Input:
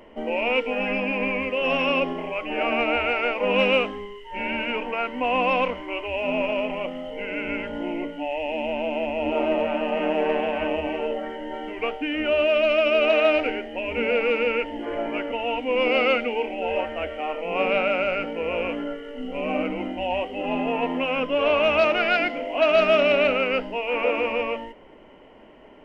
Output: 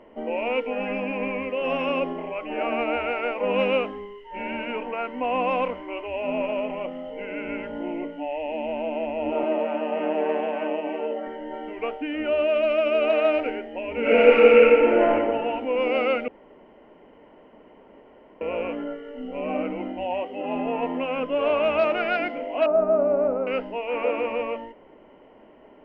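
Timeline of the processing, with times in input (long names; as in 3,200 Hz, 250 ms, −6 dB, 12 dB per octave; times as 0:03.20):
0:09.43–0:11.27: high-pass filter 200 Hz 24 dB per octave
0:14.00–0:15.09: thrown reverb, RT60 1.9 s, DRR −10.5 dB
0:16.28–0:18.41: fill with room tone
0:20.05–0:20.56: high-pass filter 120 Hz 6 dB per octave
0:22.66–0:23.47: low-pass filter 1,100 Hz 24 dB per octave
whole clip: low-pass filter 1,300 Hz 6 dB per octave; low-shelf EQ 120 Hz −8.5 dB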